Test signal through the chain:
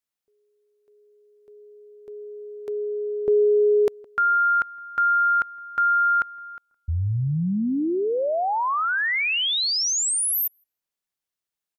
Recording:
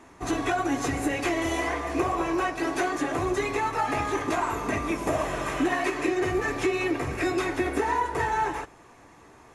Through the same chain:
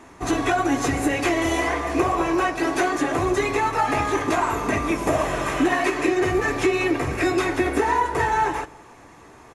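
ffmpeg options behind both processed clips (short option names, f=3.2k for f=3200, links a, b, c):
-filter_complex "[0:a]asplit=2[a][b];[b]adelay=164,lowpass=f=1.5k:p=1,volume=-23dB,asplit=2[c][d];[d]adelay=164,lowpass=f=1.5k:p=1,volume=0.44,asplit=2[e][f];[f]adelay=164,lowpass=f=1.5k:p=1,volume=0.44[g];[a][c][e][g]amix=inputs=4:normalize=0,volume=5dB"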